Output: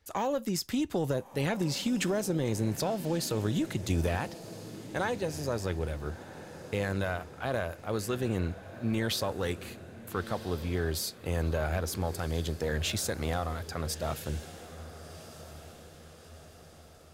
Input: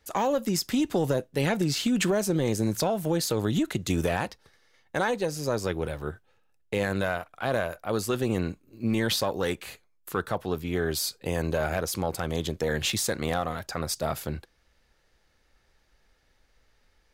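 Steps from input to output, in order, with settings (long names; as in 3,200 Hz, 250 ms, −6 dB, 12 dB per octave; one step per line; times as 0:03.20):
parametric band 81 Hz +8.5 dB 0.73 octaves
on a send: feedback delay with all-pass diffusion 1,349 ms, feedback 51%, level −14 dB
on the sum: level −5 dB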